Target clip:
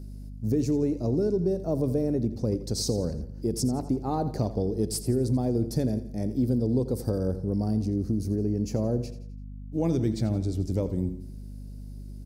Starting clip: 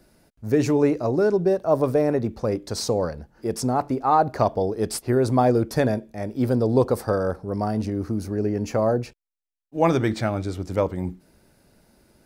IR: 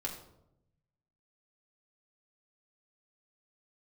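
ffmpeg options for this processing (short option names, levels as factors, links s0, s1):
-af "firequalizer=gain_entry='entry(260,0);entry(670,-13);entry(1200,-21);entry(4800,-4)':delay=0.05:min_phase=1,acompressor=threshold=0.0355:ratio=3,aecho=1:1:85|170|255|340:0.211|0.0951|0.0428|0.0193,aeval=exprs='val(0)+0.00708*(sin(2*PI*50*n/s)+sin(2*PI*2*50*n/s)/2+sin(2*PI*3*50*n/s)/3+sin(2*PI*4*50*n/s)/4+sin(2*PI*5*50*n/s)/5)':c=same,volume=1.68"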